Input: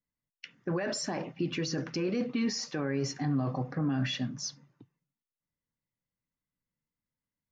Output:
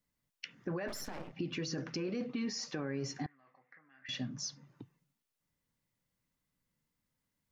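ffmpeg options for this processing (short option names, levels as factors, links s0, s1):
-filter_complex "[0:a]acompressor=threshold=0.00224:ratio=2,asettb=1/sr,asplit=3[s0][s1][s2];[s0]atrim=end=0.884[s3];[s1]atrim=start=0.88:end=1.33,asetpts=PTS-STARTPTS,afade=t=in:d=0.004:c=qsin,afade=t=out:st=0.446:d=0.004:c=qsin,aeval=exprs='max(val(0),0)':c=same[s4];[s2]atrim=start=1.326[s5];[s3][s4]acrossfade=d=0.004:c1=hsin:c2=qsin[s6];[s6][s5]acrossfade=d=0.004:c1=qsin:c2=hsin,asettb=1/sr,asplit=3[s7][s8][s9];[s7]atrim=end=3.264[s10];[s8]atrim=start=3.26:end=4.09,asetpts=PTS-STARTPTS,afade=t=in:d=0.004:c=qsin,afade=t=out:st=0.826:d=0.004:c=qsin,bandpass=f=2000:t=q:w=6.8:csg=0[s11];[s9]atrim=start=4.086[s12];[s10][s11]acrossfade=d=0.004:c1=hsin:c2=qsin[s13];[s13][s12]acrossfade=d=0.004:c1=qsin:c2=hsin,volume=2.24"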